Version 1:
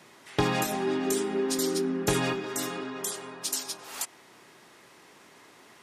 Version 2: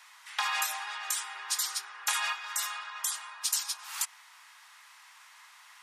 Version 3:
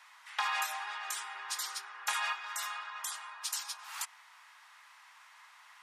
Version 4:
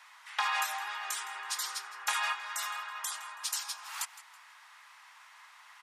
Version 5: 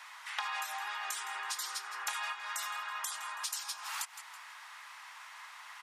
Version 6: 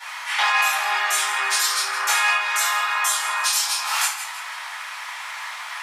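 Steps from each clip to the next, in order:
Butterworth high-pass 920 Hz 36 dB per octave; level +1.5 dB
high-shelf EQ 3,300 Hz −9 dB
repeating echo 163 ms, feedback 30%, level −17 dB; level +2 dB
downward compressor 4 to 1, threshold −42 dBFS, peak gain reduction 13.5 dB; level +5.5 dB
convolution reverb RT60 0.55 s, pre-delay 3 ms, DRR −12 dB; level +3.5 dB

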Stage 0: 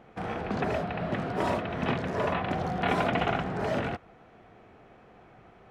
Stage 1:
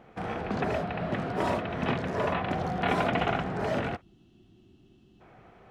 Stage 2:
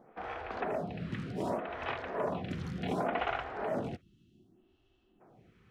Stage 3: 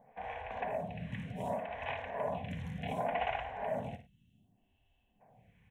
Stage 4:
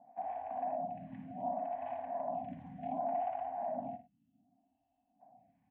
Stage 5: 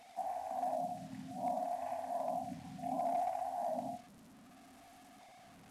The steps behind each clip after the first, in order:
gain on a spectral selection 0:04.01–0:05.21, 400–2,600 Hz −21 dB
phaser with staggered stages 0.67 Hz; level −3.5 dB
phaser with its sweep stopped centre 1,300 Hz, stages 6; on a send: multi-tap delay 57/101 ms −10.5/−18 dB
brickwall limiter −30 dBFS, peak gain reduction 8.5 dB; pair of resonant band-passes 440 Hz, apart 1.4 octaves; level +7 dB
linear delta modulator 64 kbit/s, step −52.5 dBFS

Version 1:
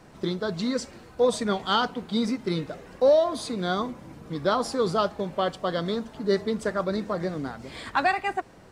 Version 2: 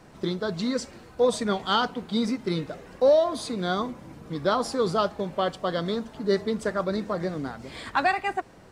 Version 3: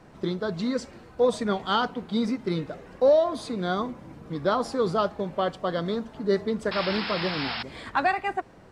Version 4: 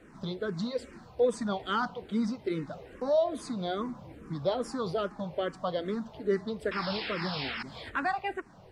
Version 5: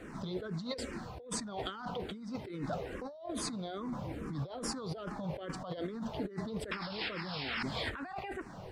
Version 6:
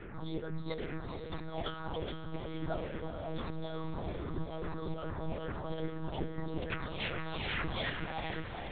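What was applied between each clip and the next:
no processing that can be heard
sound drawn into the spectrogram noise, 0:06.71–0:07.63, 680–5,400 Hz −30 dBFS; high-shelf EQ 4,200 Hz −8 dB
in parallel at −3 dB: downward compressor, threshold −31 dBFS, peak gain reduction 14.5 dB; on the sum: frequency shifter mixed with the dry sound −2.4 Hz; level −4.5 dB
compressor whose output falls as the input rises −40 dBFS, ratio −1
on a send: feedback delay with all-pass diffusion 455 ms, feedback 61%, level −7 dB; on the sum: one-pitch LPC vocoder at 8 kHz 160 Hz; level +1 dB

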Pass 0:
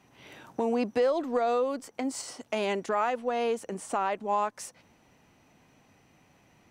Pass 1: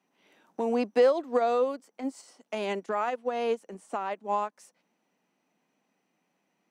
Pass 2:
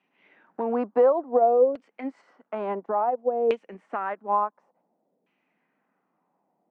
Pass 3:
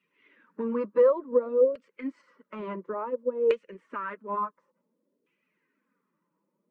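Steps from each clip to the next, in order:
Chebyshev high-pass filter 180 Hz, order 4; in parallel at −0.5 dB: brickwall limiter −25.5 dBFS, peak gain reduction 8.5 dB; on the sum: expander for the loud parts 2.5 to 1, over −33 dBFS; level +2 dB
auto-filter low-pass saw down 0.57 Hz 500–2,800 Hz
spectral magnitudes quantised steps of 15 dB; flanger 0.55 Hz, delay 1.4 ms, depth 5 ms, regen −30%; Butterworth band-reject 740 Hz, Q 1.8; level +2.5 dB

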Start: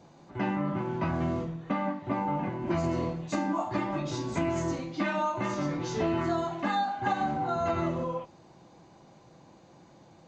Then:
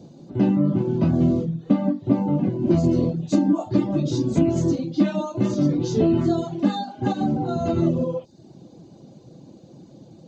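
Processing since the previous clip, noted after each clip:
reverb reduction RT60 0.56 s
octave-band graphic EQ 125/250/500/1,000/2,000/4,000 Hz +7/+9/+5/−9/−11/+4 dB
level +4.5 dB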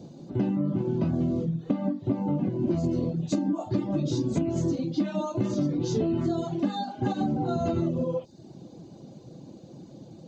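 downward compressor, threshold −23 dBFS, peak gain reduction 10.5 dB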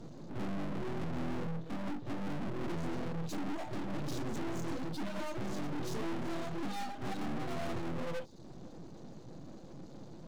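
tube saturation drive 37 dB, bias 0.8
half-wave rectification
level +7 dB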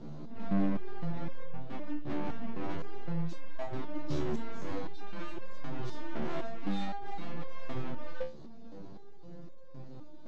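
high-frequency loss of the air 130 metres
step-sequenced resonator 3.9 Hz 74–530 Hz
level +11.5 dB

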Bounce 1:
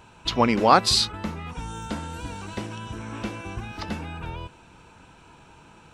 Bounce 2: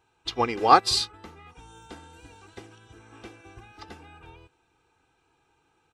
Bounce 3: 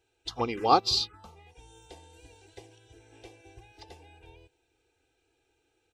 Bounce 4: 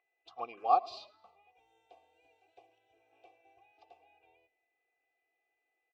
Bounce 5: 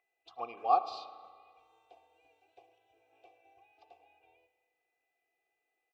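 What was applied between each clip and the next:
low-shelf EQ 74 Hz −10 dB; comb filter 2.5 ms, depth 65%; expander for the loud parts 1.5 to 1, over −44 dBFS; level −1 dB
phaser swept by the level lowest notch 180 Hz, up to 1,800 Hz, full sweep at −20.5 dBFS; level −1.5 dB
steady tone 2,000 Hz −54 dBFS; formant filter a; echo with shifted repeats 107 ms, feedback 40%, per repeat −41 Hz, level −22 dB
convolution reverb RT60 1.8 s, pre-delay 34 ms, DRR 11.5 dB

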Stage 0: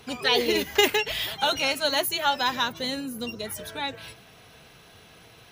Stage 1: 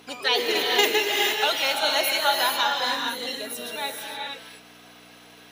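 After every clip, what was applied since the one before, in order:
reverb whose tail is shaped and stops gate 490 ms rising, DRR 0 dB
mains hum 60 Hz, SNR 13 dB
high-pass filter 410 Hz 12 dB per octave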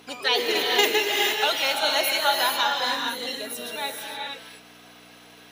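no processing that can be heard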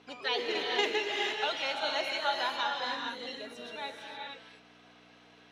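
high-frequency loss of the air 120 metres
level −7.5 dB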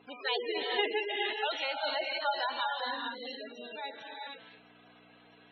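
gate on every frequency bin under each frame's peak −15 dB strong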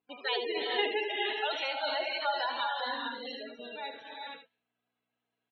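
noise gate −46 dBFS, range −28 dB
on a send: single-tap delay 75 ms −8.5 dB

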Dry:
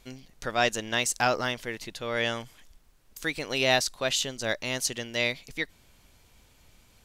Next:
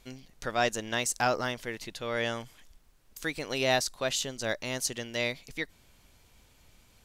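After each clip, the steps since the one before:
dynamic equaliser 2,900 Hz, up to −4 dB, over −36 dBFS, Q 0.96
level −1.5 dB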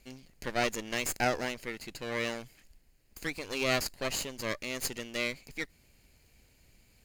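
lower of the sound and its delayed copy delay 0.42 ms
level −1.5 dB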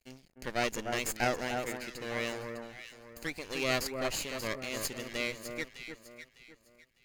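dead-zone distortion −58.5 dBFS
delay that swaps between a low-pass and a high-pass 302 ms, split 1,600 Hz, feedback 53%, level −4.5 dB
level −1.5 dB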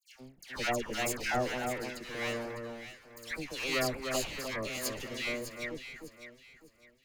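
all-pass dispersion lows, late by 142 ms, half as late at 1,400 Hz

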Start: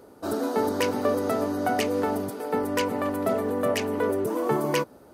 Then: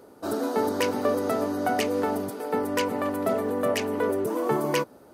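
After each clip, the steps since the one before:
low-shelf EQ 67 Hz −9 dB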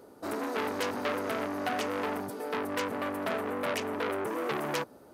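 saturating transformer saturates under 2,600 Hz
level −2.5 dB

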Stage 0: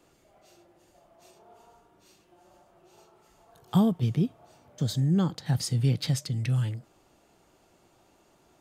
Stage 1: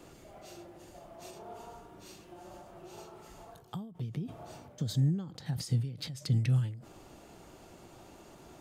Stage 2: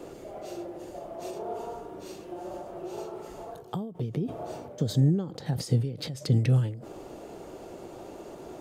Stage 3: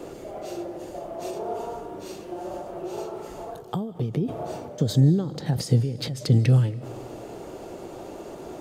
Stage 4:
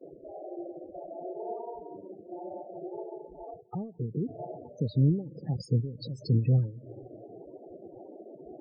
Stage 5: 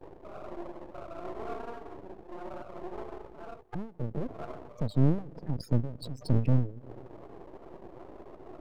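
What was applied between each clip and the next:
low-shelf EQ 390 Hz +4.5 dB; reversed playback; downward compressor 8 to 1, threshold −31 dBFS, peak gain reduction 17 dB; reversed playback; every ending faded ahead of time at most 100 dB per second; level +7.5 dB
parametric band 460 Hz +12 dB 1.6 octaves; level +3 dB
comb and all-pass reverb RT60 1.4 s, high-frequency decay 0.95×, pre-delay 115 ms, DRR 18.5 dB; level +4.5 dB
downward expander −36 dBFS; transient designer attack −2 dB, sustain −7 dB; spectral peaks only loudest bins 16; level −5 dB
half-wave rectification; level +3 dB

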